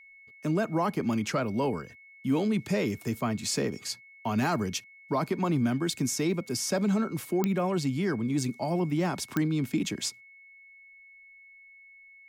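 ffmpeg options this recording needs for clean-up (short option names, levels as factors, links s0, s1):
-af "adeclick=t=4,bandreject=f=2200:w=30"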